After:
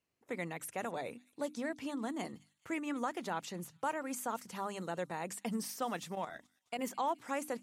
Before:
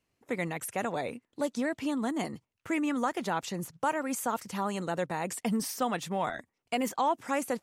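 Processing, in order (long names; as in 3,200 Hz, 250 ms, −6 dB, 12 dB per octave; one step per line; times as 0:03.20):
mains-hum notches 50/100/150/200/250/300 Hz
delay with a high-pass on its return 213 ms, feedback 50%, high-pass 3,200 Hz, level −19 dB
0:06.15–0:06.79: output level in coarse steps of 10 dB
low-shelf EQ 69 Hz −8 dB
level −6.5 dB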